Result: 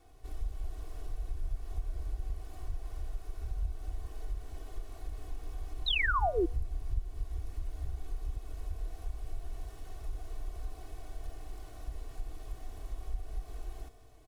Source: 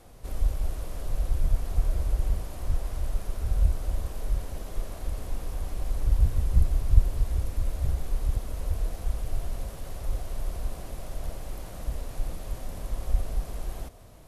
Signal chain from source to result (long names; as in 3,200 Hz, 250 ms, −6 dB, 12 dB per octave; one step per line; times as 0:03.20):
running median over 3 samples
downward compressor 2 to 1, threshold −27 dBFS, peak gain reduction 10 dB
tuned comb filter 150 Hz, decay 1.6 s, mix 70%
sound drawn into the spectrogram fall, 0:05.86–0:06.46, 310–4,100 Hz −31 dBFS
comb filter 2.7 ms, depth 91%
hum removal 240.3 Hz, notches 7
level −1.5 dB